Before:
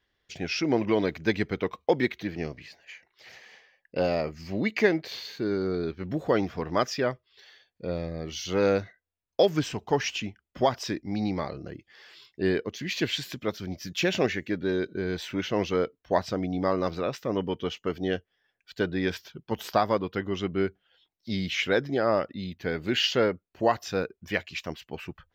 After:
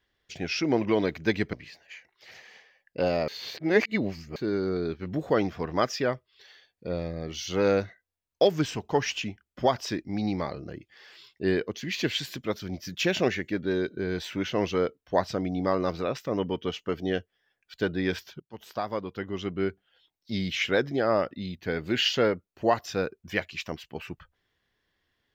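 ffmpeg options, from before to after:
-filter_complex "[0:a]asplit=5[a][b][c][d][e];[a]atrim=end=1.532[f];[b]atrim=start=2.508:end=4.262[g];[c]atrim=start=4.258:end=5.342,asetpts=PTS-STARTPTS,areverse[h];[d]atrim=start=5.338:end=19.38,asetpts=PTS-STARTPTS,afade=t=out:st=14.038:d=0.004:c=hsin:silence=0.125893[i];[e]atrim=start=19.38,asetpts=PTS-STARTPTS,afade=t=in:d=2.04:c=qsin:silence=0.125893[j];[f][g]acrossfade=d=0.004:c1=hsin:c2=hsin[k];[k][h]acrossfade=d=0.004:c1=hsin:c2=hsin[l];[i][j]concat=n=2:v=0:a=1[m];[l][m]acrossfade=d=0.004:c1=hsin:c2=hsin"

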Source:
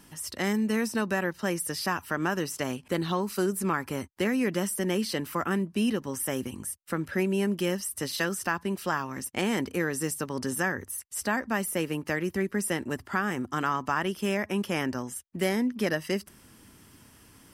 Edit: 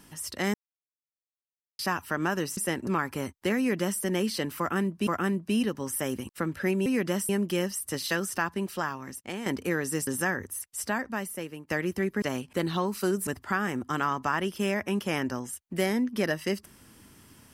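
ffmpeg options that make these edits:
-filter_complex "[0:a]asplit=14[a][b][c][d][e][f][g][h][i][j][k][l][m][n];[a]atrim=end=0.54,asetpts=PTS-STARTPTS,afade=t=out:st=0.536:d=0.004:c=hsin[o];[b]atrim=start=0.54:end=1.79,asetpts=PTS-STARTPTS,volume=0[p];[c]atrim=start=1.79:end=2.572,asetpts=PTS-STARTPTS,afade=t=in:d=0.004:c=hsin[q];[d]atrim=start=12.598:end=12.902[r];[e]atrim=start=3.618:end=5.822[s];[f]atrim=start=5.338:end=6.562[t];[g]atrim=start=6.808:end=7.382[u];[h]atrim=start=4.328:end=4.762[v];[i]atrim=start=7.378:end=9.55,asetpts=PTS-STARTPTS,afade=t=out:st=1.232:d=0.94:silence=0.316228[w];[j]atrim=start=9.55:end=10.162,asetpts=PTS-STARTPTS,afade=t=in:d=0.004:c=hsin:silence=0.316228[x];[k]atrim=start=10.448:end=12.08,asetpts=PTS-STARTPTS,afade=t=out:st=0.642:d=0.99:silence=0.199526[y];[l]atrim=start=12.08:end=12.602,asetpts=PTS-STARTPTS,afade=t=in:d=0.004:c=hsin:silence=0.199526[z];[m]atrim=start=2.568:end=3.622[aa];[n]atrim=start=12.898[ab];[o][p][q]concat=n=3:v=0:a=1[ac];[ac][r]acrossfade=d=0.004:c1=hsin:c2=hsin[ad];[ad][s]acrossfade=d=0.004:c1=hsin:c2=hsin[ae];[ae][t]acrossfade=d=0.004:c1=hsin:c2=hsin[af];[af][u]acrossfade=d=0.004:c1=hsin:c2=hsin[ag];[ag][v]acrossfade=d=0.004:c1=hsin:c2=hsin[ah];[w][x]concat=n=2:v=0:a=1[ai];[ah][ai]acrossfade=d=0.004:c1=hsin:c2=hsin[aj];[y][z]concat=n=2:v=0:a=1[ak];[aj][ak]acrossfade=d=0.004:c1=hsin:c2=hsin[al];[al][aa]acrossfade=d=0.004:c1=hsin:c2=hsin[am];[am][ab]acrossfade=d=0.004:c1=hsin:c2=hsin"

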